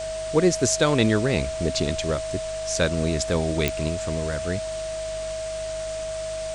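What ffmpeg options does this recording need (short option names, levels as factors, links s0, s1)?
-af "adeclick=t=4,bandreject=f=50.9:t=h:w=4,bandreject=f=101.8:t=h:w=4,bandreject=f=152.7:t=h:w=4,bandreject=f=640:w=30,afwtdn=0.014"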